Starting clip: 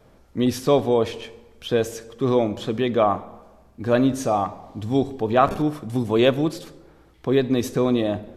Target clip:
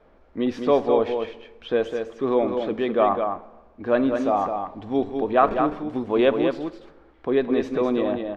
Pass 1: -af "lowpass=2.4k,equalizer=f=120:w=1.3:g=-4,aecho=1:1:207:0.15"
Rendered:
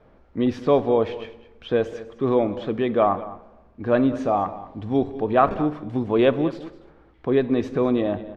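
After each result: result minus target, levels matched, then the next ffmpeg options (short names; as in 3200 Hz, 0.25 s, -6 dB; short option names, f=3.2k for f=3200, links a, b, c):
125 Hz band +8.0 dB; echo-to-direct -10.5 dB
-af "lowpass=2.4k,equalizer=f=120:w=1.3:g=-15.5,aecho=1:1:207:0.15"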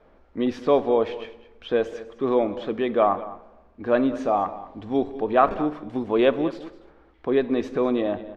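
echo-to-direct -10.5 dB
-af "lowpass=2.4k,equalizer=f=120:w=1.3:g=-15.5,aecho=1:1:207:0.501"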